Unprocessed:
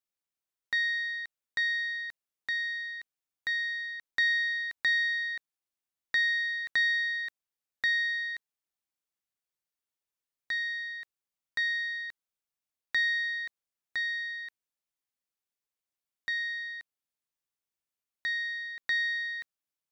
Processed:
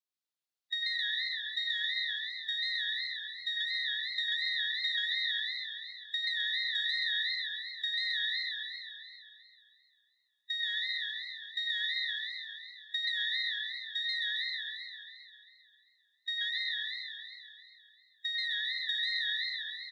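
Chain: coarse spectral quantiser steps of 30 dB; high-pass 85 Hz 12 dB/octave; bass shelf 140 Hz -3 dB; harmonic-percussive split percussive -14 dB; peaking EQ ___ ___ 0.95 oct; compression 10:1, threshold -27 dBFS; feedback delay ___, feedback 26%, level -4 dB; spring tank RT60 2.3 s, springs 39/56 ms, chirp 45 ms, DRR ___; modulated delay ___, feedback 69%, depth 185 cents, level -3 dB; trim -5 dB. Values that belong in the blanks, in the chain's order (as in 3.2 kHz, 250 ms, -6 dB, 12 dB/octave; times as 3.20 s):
4.1 kHz, +9 dB, 101 ms, 4.5 dB, 133 ms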